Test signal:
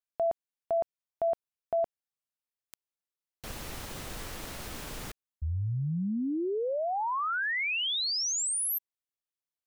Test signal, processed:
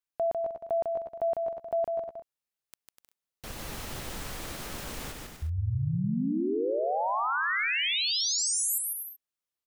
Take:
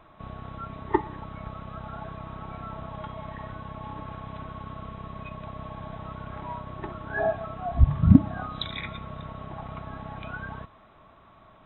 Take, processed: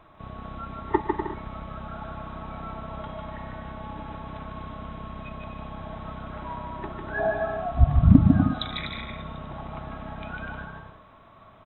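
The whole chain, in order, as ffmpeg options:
-af "aecho=1:1:150|247.5|310.9|352.1|378.8:0.631|0.398|0.251|0.158|0.1"

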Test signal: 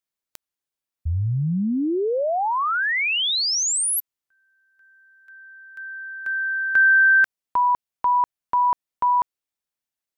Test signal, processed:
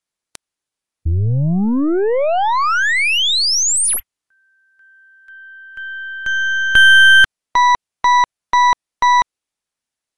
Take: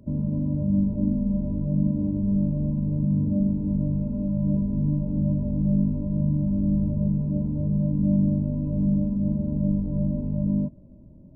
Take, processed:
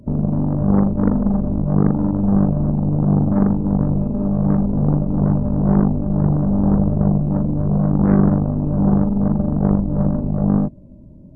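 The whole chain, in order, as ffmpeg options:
-af "aeval=exprs='0.266*(cos(1*acos(clip(val(0)/0.266,-1,1)))-cos(1*PI/2))+0.106*(cos(2*acos(clip(val(0)/0.266,-1,1)))-cos(2*PI/2))+0.0299*(cos(8*acos(clip(val(0)/0.266,-1,1)))-cos(8*PI/2))':c=same,volume=2.11" -ar 24000 -c:a aac -b:a 64k

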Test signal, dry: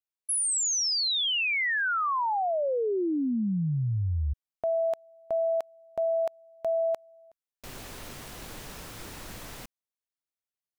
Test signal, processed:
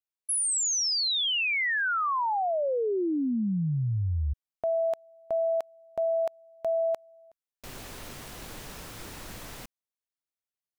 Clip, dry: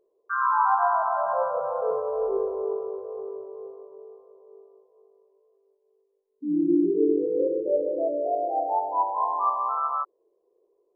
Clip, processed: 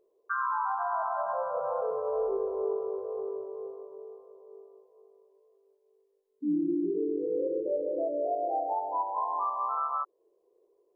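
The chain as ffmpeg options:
-af "alimiter=limit=0.0794:level=0:latency=1:release=320"

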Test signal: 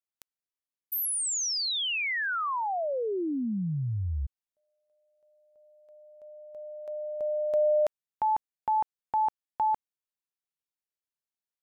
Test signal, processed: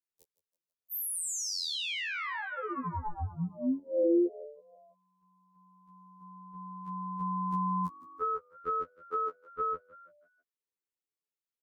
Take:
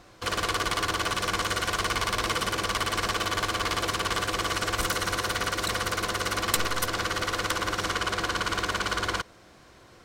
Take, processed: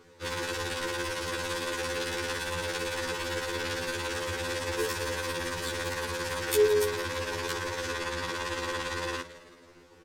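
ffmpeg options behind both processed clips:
-filter_complex "[0:a]lowshelf=f=140:g=11,acrossover=split=350|3500[s0][s1][s2];[s1]acompressor=threshold=0.0316:ratio=6:attack=42:release=86:knee=2.83:detection=peak[s3];[s0][s3][s2]amix=inputs=3:normalize=0,aeval=exprs='val(0)*sin(2*PI*420*n/s)':c=same,asuperstop=centerf=670:order=4:qfactor=2.5,asplit=5[s4][s5][s6][s7][s8];[s5]adelay=164,afreqshift=48,volume=0.158[s9];[s6]adelay=328,afreqshift=96,volume=0.0776[s10];[s7]adelay=492,afreqshift=144,volume=0.038[s11];[s8]adelay=656,afreqshift=192,volume=0.0186[s12];[s4][s9][s10][s11][s12]amix=inputs=5:normalize=0,afftfilt=real='re*2*eq(mod(b,4),0)':imag='im*2*eq(mod(b,4),0)':win_size=2048:overlap=0.75"

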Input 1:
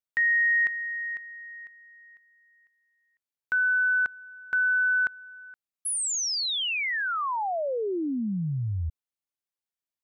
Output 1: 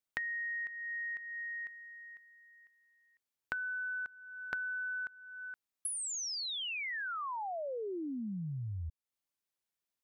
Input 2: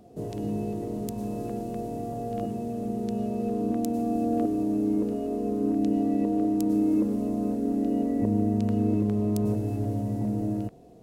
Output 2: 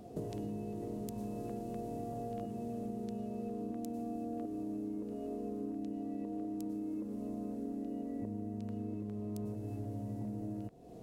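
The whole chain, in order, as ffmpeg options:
-af "acompressor=threshold=0.0112:ratio=10:attack=31:release=342:knee=1:detection=rms,volume=1.19"

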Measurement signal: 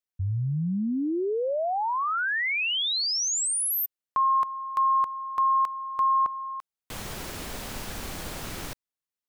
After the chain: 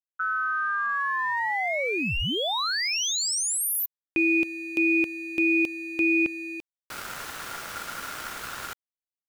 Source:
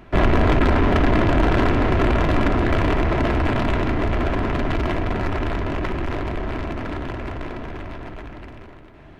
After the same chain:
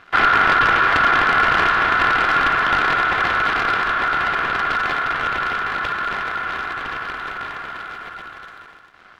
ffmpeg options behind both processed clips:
-af "aeval=exprs='sgn(val(0))*max(abs(val(0))-0.00316,0)':c=same,aeval=exprs='val(0)*sin(2*PI*1400*n/s)':c=same,volume=1.5"

